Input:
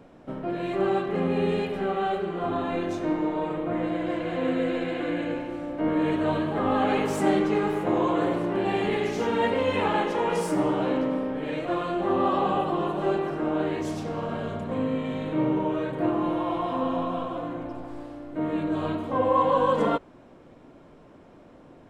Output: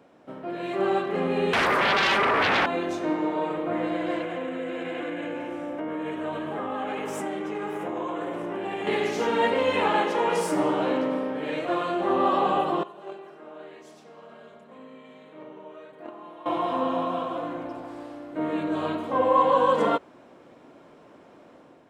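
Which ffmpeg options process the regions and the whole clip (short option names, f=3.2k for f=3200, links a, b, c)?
-filter_complex "[0:a]asettb=1/sr,asplit=3[a][b][c];[a]atrim=end=1.534[d];[b]atrim=start=1.53:end=2.66,asetpts=PTS-STARTPTS,afade=t=in:d=0.004:c=qsin,afade=t=out:st=1.126:d=0.004:c=qsin,equalizer=f=2.3k:w=0.66:g=-12,aeval=exprs='0.133*sin(PI/2*5.62*val(0)/0.133)':c=same,aeval=exprs='val(0)*sin(2*PI*800*n/s)':c=same[e];[c]atrim=start=2.656[f];[d][e]acrossfade=d=0.004:c1=hsin:c2=qsin[g];[g][f]acrossfade=d=0.004:c1=qsin:c2=hsin,asettb=1/sr,asplit=3[h][i][j];[h]atrim=end=4.224[k];[i]atrim=start=4.22:end=8.87,asetpts=PTS-STARTPTS,afade=t=in:d=0.004:c=qsin,afade=t=out:st=4.646:d=0.004:c=qsin,acompressor=threshold=-28dB:ratio=6:attack=3.2:release=140:knee=1:detection=peak,equalizer=f=4.3k:t=o:w=0.28:g=-10.5[l];[j]atrim=start=8.866[m];[k][l]acrossfade=d=0.004:c1=hsin:c2=qsin[n];[n][m]acrossfade=d=0.004:c1=qsin:c2=hsin,asettb=1/sr,asplit=3[o][p][q];[o]atrim=end=12.834[r];[p]atrim=start=12.83:end=16.46,asetpts=PTS-STARTPTS,afade=t=in:d=0.004:c=qsin,afade=t=out:st=3.626:d=0.004:c=qsin,agate=range=-16dB:threshold=-21dB:ratio=16:release=100:detection=peak,lowshelf=f=180:g=-10,aecho=1:1:4.8:0.37,atrim=end_sample=160083[s];[q]atrim=start=16.456[t];[r][s]acrossfade=d=0.004:c1=hsin:c2=qsin[u];[u][t]acrossfade=d=0.004:c1=qsin:c2=hsin,dynaudnorm=f=440:g=3:m=5dB,highpass=f=350:p=1,volume=-2dB"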